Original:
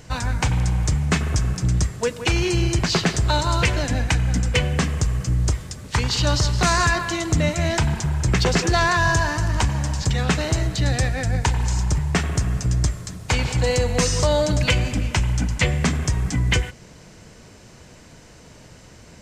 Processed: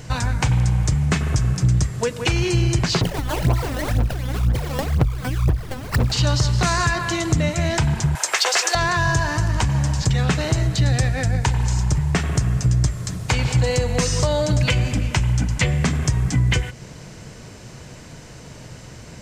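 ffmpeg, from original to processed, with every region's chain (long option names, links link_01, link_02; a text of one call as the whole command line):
ffmpeg -i in.wav -filter_complex "[0:a]asettb=1/sr,asplit=3[link_01][link_02][link_03];[link_01]atrim=end=3.014[link_04];[link_02]atrim=start=3.01:end=6.12,asetpts=PTS-STARTPTS,afade=type=in:duration=0.004:curve=qsin,afade=type=out:start_time=3.106:duration=0.004:curve=qsin,acompressor=threshold=-25dB:ratio=5:attack=3.2:release=140:knee=1:detection=peak,acrusher=samples=26:mix=1:aa=0.000001:lfo=1:lforange=26:lforate=3,aphaser=in_gain=1:out_gain=1:delay=4:decay=0.78:speed=2:type=sinusoidal[link_05];[link_03]atrim=start=6.116[link_06];[link_04][link_05]acrossfade=duration=0.004:curve1=hsin:curve2=qsin[link_07];[link_07][link_06]acrossfade=duration=0.004:curve1=qsin:curve2=hsin,asettb=1/sr,asplit=3[link_08][link_09][link_10];[link_08]atrim=end=8.154[link_11];[link_09]atrim=start=8.15:end=8.75,asetpts=PTS-STARTPTS,afade=type=in:duration=0.004:curve=qsin,afade=type=out:start_time=0.596:duration=0.004:curve=qsin,highpass=frequency=610:width=0.5412,highpass=frequency=610:width=1.3066,highshelf=frequency=7700:gain=9,acontrast=61[link_12];[link_10]atrim=start=8.746[link_13];[link_11][link_12]acrossfade=duration=0.004:curve1=hsin:curve2=qsin[link_14];[link_14][link_13]acrossfade=duration=0.004:curve1=qsin:curve2=hsin,acompressor=threshold=-27dB:ratio=2,equalizer=frequency=130:width_type=o:width=0.41:gain=6.5,volume=5dB" out.wav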